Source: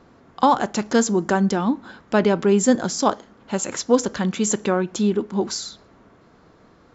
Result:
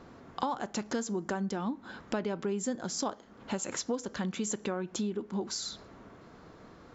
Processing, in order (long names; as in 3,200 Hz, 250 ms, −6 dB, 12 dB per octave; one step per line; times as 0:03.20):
downward compressor 5 to 1, threshold −32 dBFS, peak gain reduction 19 dB